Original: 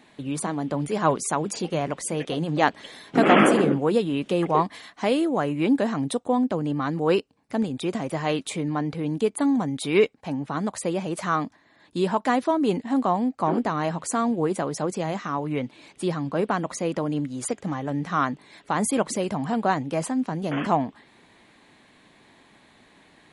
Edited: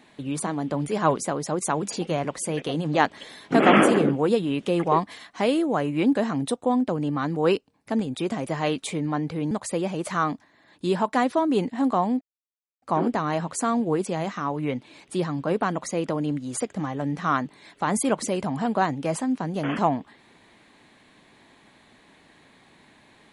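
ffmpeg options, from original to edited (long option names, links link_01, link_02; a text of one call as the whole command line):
ffmpeg -i in.wav -filter_complex "[0:a]asplit=6[link_01][link_02][link_03][link_04][link_05][link_06];[link_01]atrim=end=1.252[link_07];[link_02]atrim=start=14.558:end=14.932[link_08];[link_03]atrim=start=1.248:end=9.142[link_09];[link_04]atrim=start=10.628:end=13.33,asetpts=PTS-STARTPTS,afade=type=out:start_time=2.698:duration=0.004:curve=hsin,apad=pad_dur=0.61[link_10];[link_05]atrim=start=13.33:end=14.562,asetpts=PTS-STARTPTS,afade=type=in:duration=0.004:curve=hsin[link_11];[link_06]atrim=start=14.928[link_12];[link_07][link_08]acrossfade=duration=0.004:curve1=hsin:curve2=hsin[link_13];[link_13][link_09]acrossfade=duration=0.004:curve1=hsin:curve2=hsin[link_14];[link_10][link_11]concat=n=2:v=0:a=1[link_15];[link_14][link_15]acrossfade=duration=0.004:curve1=hsin:curve2=hsin[link_16];[link_16][link_12]acrossfade=duration=0.004:curve1=hsin:curve2=hsin" out.wav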